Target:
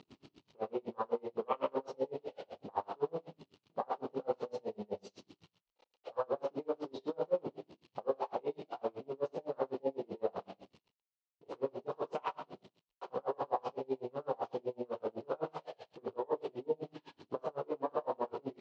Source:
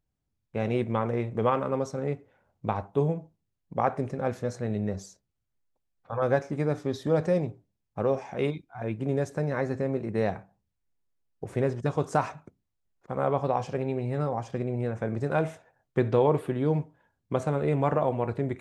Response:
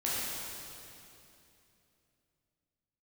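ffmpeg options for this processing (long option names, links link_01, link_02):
-filter_complex "[0:a]aeval=exprs='val(0)+0.5*0.0335*sgn(val(0))':channel_layout=same,afwtdn=0.0316,alimiter=limit=-20.5dB:level=0:latency=1:release=20,highpass=420,equalizer=frequency=450:width_type=q:width=4:gain=3,equalizer=frequency=950:width_type=q:width=4:gain=4,equalizer=frequency=1600:width_type=q:width=4:gain=-7,equalizer=frequency=2900:width_type=q:width=4:gain=7,equalizer=frequency=4200:width_type=q:width=4:gain=5,lowpass=frequency=5200:width=0.5412,lowpass=frequency=5200:width=1.3066,asplit=2[link_01][link_02];[link_02]aecho=0:1:30|63|99.3|139.2|183.2:0.631|0.398|0.251|0.158|0.1[link_03];[link_01][link_03]amix=inputs=2:normalize=0,aeval=exprs='val(0)*pow(10,-34*(0.5-0.5*cos(2*PI*7.9*n/s))/20)':channel_layout=same,volume=-1.5dB"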